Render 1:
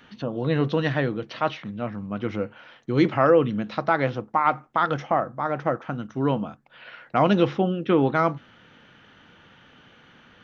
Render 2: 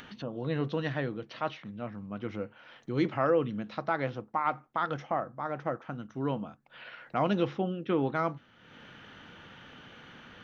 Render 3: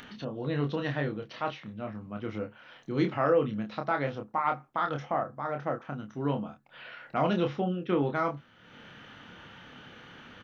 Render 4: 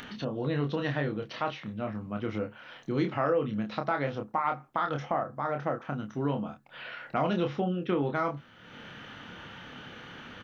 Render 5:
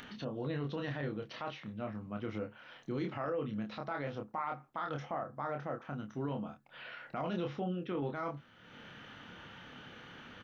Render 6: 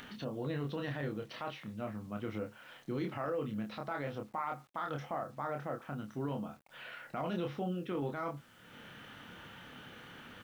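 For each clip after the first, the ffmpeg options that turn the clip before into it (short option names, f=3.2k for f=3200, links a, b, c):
-af "acompressor=mode=upward:threshold=-31dB:ratio=2.5,volume=-8.5dB"
-filter_complex "[0:a]asplit=2[a][b];[b]adelay=28,volume=-5dB[c];[a][c]amix=inputs=2:normalize=0"
-af "acompressor=threshold=-32dB:ratio=2,volume=4dB"
-af "alimiter=limit=-22dB:level=0:latency=1:release=11,volume=-6dB"
-af "acrusher=bits=10:mix=0:aa=0.000001"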